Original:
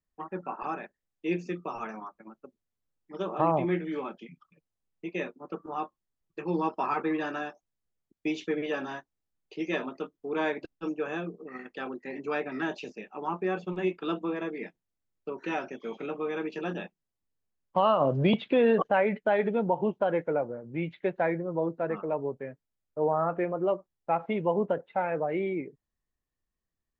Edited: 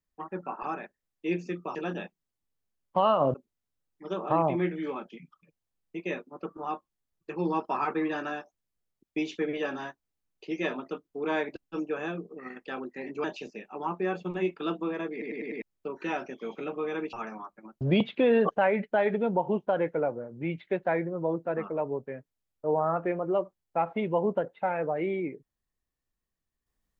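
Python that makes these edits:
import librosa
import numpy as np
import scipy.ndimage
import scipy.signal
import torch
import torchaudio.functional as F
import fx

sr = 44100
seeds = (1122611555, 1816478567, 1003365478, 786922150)

y = fx.edit(x, sr, fx.swap(start_s=1.75, length_s=0.68, other_s=16.55, other_length_s=1.59),
    fx.cut(start_s=12.33, length_s=0.33),
    fx.stutter_over(start_s=14.54, slice_s=0.1, count=5), tone=tone)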